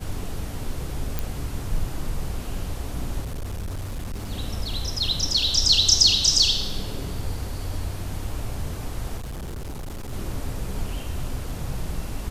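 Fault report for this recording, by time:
0:01.19: click
0:03.22–0:04.32: clipping −27 dBFS
0:09.17–0:10.13: clipping −30 dBFS

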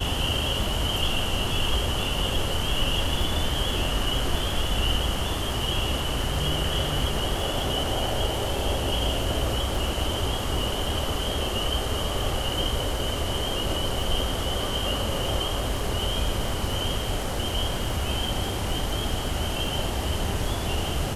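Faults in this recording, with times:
surface crackle 14 per second −30 dBFS

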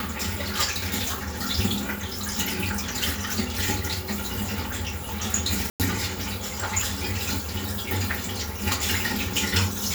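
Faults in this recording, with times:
0:05.70–0:05.80: drop-out 98 ms

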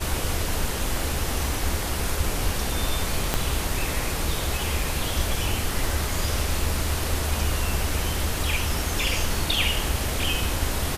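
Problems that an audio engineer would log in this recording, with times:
0:03.34: click −6 dBFS

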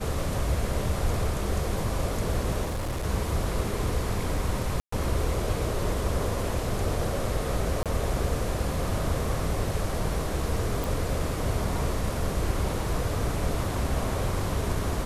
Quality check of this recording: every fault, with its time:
0:02.63–0:03.05: clipping −26.5 dBFS
0:04.80–0:04.92: drop-out 124 ms
0:07.83–0:07.86: drop-out 27 ms
0:10.84: click

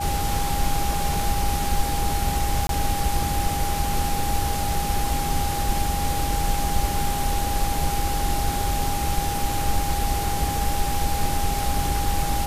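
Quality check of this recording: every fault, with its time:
whistle 810 Hz −27 dBFS
0:02.67–0:02.69: drop-out 22 ms

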